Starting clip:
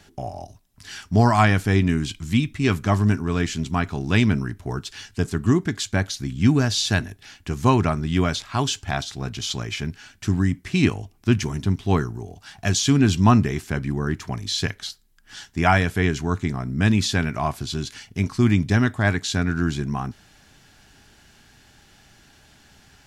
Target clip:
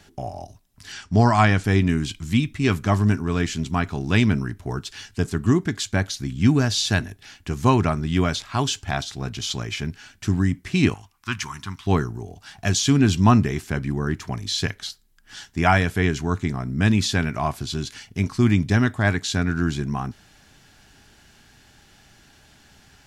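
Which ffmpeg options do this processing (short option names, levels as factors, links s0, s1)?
-filter_complex "[0:a]asettb=1/sr,asplit=3[s0][s1][s2];[s0]atrim=end=0.924[s3];[s1]atrim=start=0.92:end=1.64,asetpts=PTS-STARTPTS,afade=t=in:d=0.004:c=qsin,afade=t=out:st=0.716:d=0.004:c=qsin,lowpass=f=8500:w=0.5412,lowpass=f=8500:w=1.3066[s4];[s2]atrim=start=1.636[s5];[s3][s4]acrossfade=d=0.004:c1=hsin:c2=qsin[s6];[s6][s5]acrossfade=d=0.004:c1=qsin:c2=hsin,asettb=1/sr,asplit=3[s7][s8][s9];[s7]atrim=end=10.944[s10];[s8]atrim=start=10.94:end=11.87,asetpts=PTS-STARTPTS,afade=t=in:d=0.004:c=qsin,afade=t=out:st=0.926:d=0.004:c=qsin,lowshelf=f=760:t=q:w=3:g=-12[s11];[s9]atrim=start=11.866[s12];[s10][s11]acrossfade=d=0.004:c1=hsin:c2=qsin[s13];[s13][s12]acrossfade=d=0.004:c1=qsin:c2=hsin"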